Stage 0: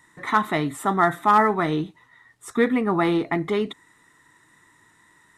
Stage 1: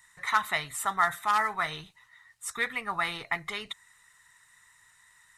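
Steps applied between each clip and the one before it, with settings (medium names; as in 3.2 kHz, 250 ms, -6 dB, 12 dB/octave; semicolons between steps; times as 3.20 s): band-stop 3.4 kHz, Q 15; harmonic-percussive split percussive +5 dB; amplifier tone stack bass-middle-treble 10-0-10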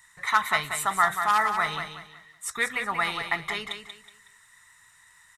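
feedback delay 185 ms, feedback 30%, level -7.5 dB; trim +3 dB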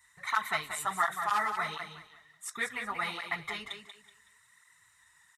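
cancelling through-zero flanger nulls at 1.4 Hz, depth 7.5 ms; trim -4 dB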